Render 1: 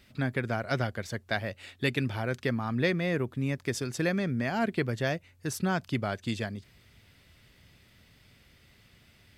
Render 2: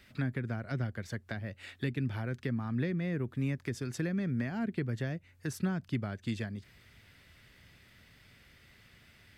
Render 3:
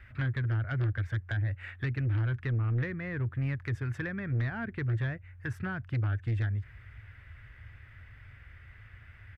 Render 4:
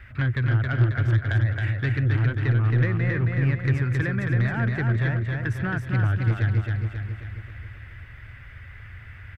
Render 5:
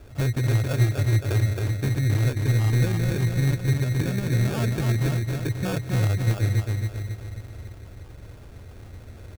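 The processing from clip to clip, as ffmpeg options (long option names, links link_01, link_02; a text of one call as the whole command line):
ffmpeg -i in.wav -filter_complex "[0:a]equalizer=frequency=1700:width_type=o:width=0.96:gain=5.5,acrossover=split=330[link_01][link_02];[link_02]acompressor=threshold=-39dB:ratio=10[link_03];[link_01][link_03]amix=inputs=2:normalize=0,volume=-1.5dB" out.wav
ffmpeg -i in.wav -af "firequalizer=gain_entry='entry(110,0);entry(160,-19);entry(1600,-5);entry(4200,-29)':delay=0.05:min_phase=1,aeval=exprs='0.0376*(cos(1*acos(clip(val(0)/0.0376,-1,1)))-cos(1*PI/2))+0.00944*(cos(5*acos(clip(val(0)/0.0376,-1,1)))-cos(5*PI/2))':channel_layout=same,volume=7dB" out.wav
ffmpeg -i in.wav -af "aecho=1:1:270|540|810|1080|1350|1620|1890:0.668|0.348|0.181|0.094|0.0489|0.0254|0.0132,volume=7dB" out.wav
ffmpeg -i in.wav -af "acrusher=samples=22:mix=1:aa=0.000001" out.wav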